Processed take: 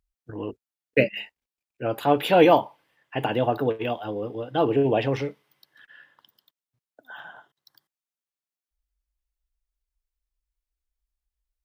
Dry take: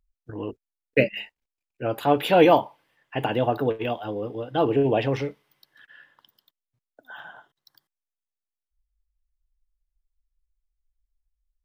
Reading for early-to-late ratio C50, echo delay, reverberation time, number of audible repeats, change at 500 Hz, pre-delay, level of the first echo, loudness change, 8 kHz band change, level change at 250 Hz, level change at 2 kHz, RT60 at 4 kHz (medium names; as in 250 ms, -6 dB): no reverb, no echo, no reverb, no echo, 0.0 dB, no reverb, no echo, 0.0 dB, no reading, 0.0 dB, 0.0 dB, no reverb